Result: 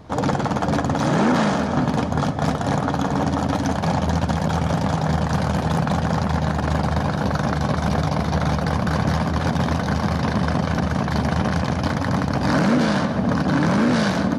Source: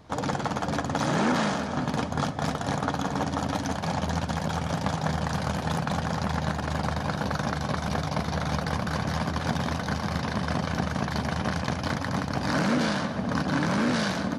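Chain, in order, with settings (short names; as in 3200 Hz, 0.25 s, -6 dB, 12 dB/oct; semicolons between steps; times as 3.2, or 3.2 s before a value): tilt shelf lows +3 dB, about 1200 Hz; limiter -16.5 dBFS, peak gain reduction 6 dB; gain +6.5 dB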